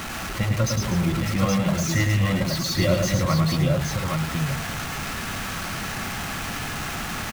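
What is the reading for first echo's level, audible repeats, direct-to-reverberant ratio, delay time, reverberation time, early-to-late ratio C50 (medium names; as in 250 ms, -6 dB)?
-4.5 dB, 3, no reverb, 106 ms, no reverb, no reverb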